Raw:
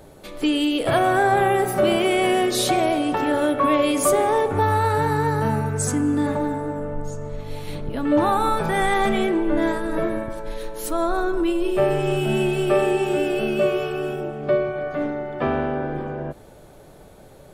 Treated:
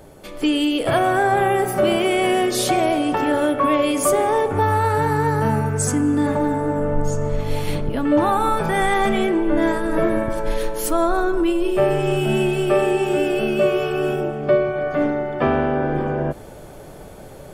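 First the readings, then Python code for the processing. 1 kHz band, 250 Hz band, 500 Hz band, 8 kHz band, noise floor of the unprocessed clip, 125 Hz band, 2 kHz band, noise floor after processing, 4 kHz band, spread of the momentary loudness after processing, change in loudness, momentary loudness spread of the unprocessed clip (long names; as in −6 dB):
+1.5 dB, +2.5 dB, +2.0 dB, +2.0 dB, −46 dBFS, +3.0 dB, +1.5 dB, −39 dBFS, +1.0 dB, 6 LU, +2.0 dB, 12 LU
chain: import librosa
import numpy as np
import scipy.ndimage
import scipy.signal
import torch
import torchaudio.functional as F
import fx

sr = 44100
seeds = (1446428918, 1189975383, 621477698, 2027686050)

p1 = fx.notch(x, sr, hz=3900.0, q=10.0)
p2 = fx.rider(p1, sr, range_db=10, speed_s=0.5)
p3 = p1 + (p2 * librosa.db_to_amplitude(3.0))
y = p3 * librosa.db_to_amplitude(-5.5)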